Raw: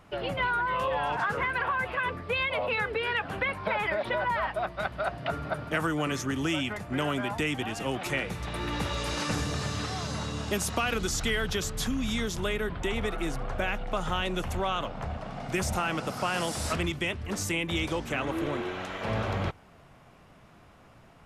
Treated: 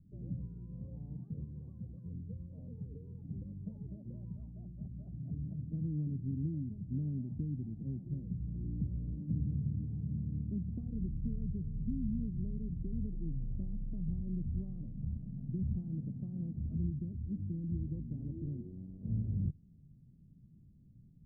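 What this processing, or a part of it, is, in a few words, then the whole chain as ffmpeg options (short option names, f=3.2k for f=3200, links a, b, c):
the neighbour's flat through the wall: -af "lowpass=f=230:w=0.5412,lowpass=f=230:w=1.3066,equalizer=f=150:t=o:w=0.89:g=4.5,volume=-3.5dB"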